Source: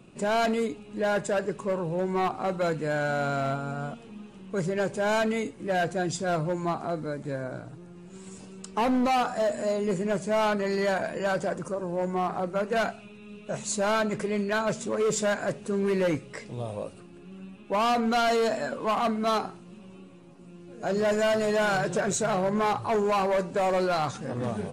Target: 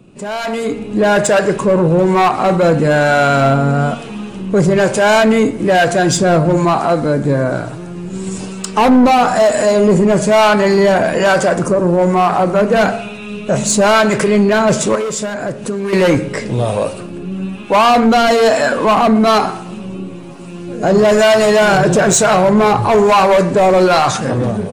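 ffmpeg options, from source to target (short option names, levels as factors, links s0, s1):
-filter_complex "[0:a]acrossover=split=590[s0][s1];[s0]aeval=exprs='val(0)*(1-0.5/2+0.5/2*cos(2*PI*1.1*n/s))':c=same[s2];[s1]aeval=exprs='val(0)*(1-0.5/2-0.5/2*cos(2*PI*1.1*n/s))':c=same[s3];[s2][s3]amix=inputs=2:normalize=0,asplit=2[s4][s5];[s5]alimiter=level_in=1.41:limit=0.0631:level=0:latency=1:release=33,volume=0.708,volume=1.26[s6];[s4][s6]amix=inputs=2:normalize=0,asettb=1/sr,asplit=3[s7][s8][s9];[s7]atrim=end=14.954[s10];[s8]atrim=start=14.95:end=15.93,asetpts=PTS-STARTPTS,afade=t=in:d=0.004:c=qsin,afade=t=out:st=0.976:d=0.004:c=qsin,acompressor=threshold=0.0224:ratio=6[s11];[s9]atrim=start=15.926[s12];[s10][s11]acrossfade=d=0.004:c1=hsin:c2=qsin[s13];[s13][s12]acrossfade=d=0.004:c1=qsin:c2=hsin,bandreject=f=76.82:t=h:w=4,bandreject=f=153.64:t=h:w=4,bandreject=f=230.46:t=h:w=4,bandreject=f=307.28:t=h:w=4,bandreject=f=384.1:t=h:w=4,bandreject=f=460.92:t=h:w=4,bandreject=f=537.74:t=h:w=4,bandreject=f=614.56:t=h:w=4,bandreject=f=691.38:t=h:w=4,bandreject=f=768.2:t=h:w=4,bandreject=f=845.02:t=h:w=4,bandreject=f=921.84:t=h:w=4,bandreject=f=998.66:t=h:w=4,bandreject=f=1075.48:t=h:w=4,bandreject=f=1152.3:t=h:w=4,bandreject=f=1229.12:t=h:w=4,bandreject=f=1305.94:t=h:w=4,bandreject=f=1382.76:t=h:w=4,bandreject=f=1459.58:t=h:w=4,bandreject=f=1536.4:t=h:w=4,bandreject=f=1613.22:t=h:w=4,bandreject=f=1690.04:t=h:w=4,bandreject=f=1766.86:t=h:w=4,bandreject=f=1843.68:t=h:w=4,bandreject=f=1920.5:t=h:w=4,bandreject=f=1997.32:t=h:w=4,bandreject=f=2074.14:t=h:w=4,bandreject=f=2150.96:t=h:w=4,bandreject=f=2227.78:t=h:w=4,bandreject=f=2304.6:t=h:w=4,bandreject=f=2381.42:t=h:w=4,asplit=2[s14][s15];[s15]adelay=121,lowpass=f=2000:p=1,volume=0.0841,asplit=2[s16][s17];[s17]adelay=121,lowpass=f=2000:p=1,volume=0.47,asplit=2[s18][s19];[s19]adelay=121,lowpass=f=2000:p=1,volume=0.47[s20];[s16][s18][s20]amix=inputs=3:normalize=0[s21];[s14][s21]amix=inputs=2:normalize=0,asoftclip=type=tanh:threshold=0.106,dynaudnorm=f=130:g=11:m=4.47,volume=1.33"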